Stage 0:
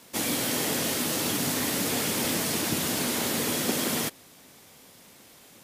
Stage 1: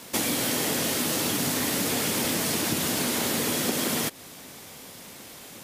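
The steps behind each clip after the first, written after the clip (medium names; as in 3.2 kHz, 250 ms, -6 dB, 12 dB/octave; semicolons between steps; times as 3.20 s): compression 4:1, threshold -33 dBFS, peak gain reduction 9.5 dB; trim +8.5 dB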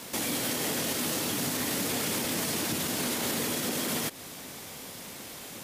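peak limiter -22.5 dBFS, peak gain reduction 9 dB; trim +1.5 dB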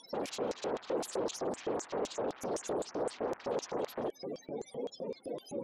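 loudest bins only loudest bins 16; sine folder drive 14 dB, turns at -24 dBFS; LFO band-pass square 3.9 Hz 480–6600 Hz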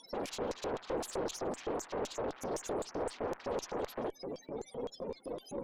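valve stage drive 30 dB, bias 0.6; trim +2 dB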